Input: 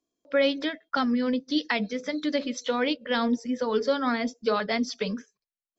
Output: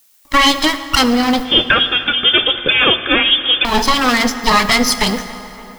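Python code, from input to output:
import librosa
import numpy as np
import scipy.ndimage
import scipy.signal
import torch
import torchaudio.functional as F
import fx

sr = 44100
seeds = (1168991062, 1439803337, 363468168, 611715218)

y = fx.lower_of_two(x, sr, delay_ms=0.97)
y = fx.high_shelf(y, sr, hz=2100.0, db=8.5)
y = fx.dmg_noise_colour(y, sr, seeds[0], colour='blue', level_db=-57.0)
y = fx.leveller(y, sr, passes=2)
y = fx.echo_wet_lowpass(y, sr, ms=283, feedback_pct=64, hz=2000.0, wet_db=-20.5)
y = fx.freq_invert(y, sr, carrier_hz=3500, at=(1.45, 3.65))
y = fx.peak_eq(y, sr, hz=90.0, db=-3.5, octaves=1.2)
y = fx.rev_fdn(y, sr, rt60_s=3.1, lf_ratio=1.0, hf_ratio=0.65, size_ms=57.0, drr_db=10.0)
y = y * librosa.db_to_amplitude(7.5)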